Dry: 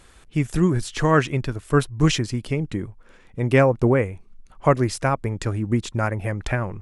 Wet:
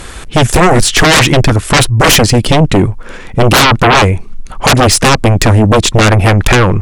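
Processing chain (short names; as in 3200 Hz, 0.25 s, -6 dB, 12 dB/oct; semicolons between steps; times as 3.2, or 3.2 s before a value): sine folder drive 19 dB, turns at -4 dBFS; gain +1 dB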